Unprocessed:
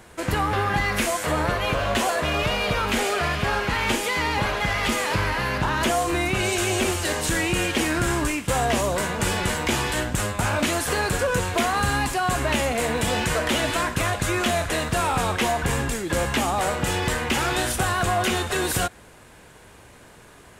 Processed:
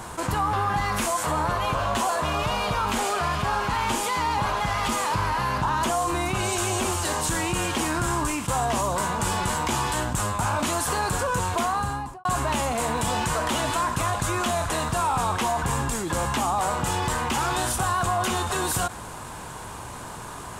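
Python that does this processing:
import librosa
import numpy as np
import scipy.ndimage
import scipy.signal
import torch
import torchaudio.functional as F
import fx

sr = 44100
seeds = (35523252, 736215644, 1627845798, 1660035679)

y = fx.studio_fade_out(x, sr, start_s=11.55, length_s=0.7)
y = fx.graphic_eq_10(y, sr, hz=(125, 500, 1000, 2000, 8000), db=(3, -4, 10, -6, 4))
y = fx.env_flatten(y, sr, amount_pct=50)
y = F.gain(torch.from_numpy(y), -6.0).numpy()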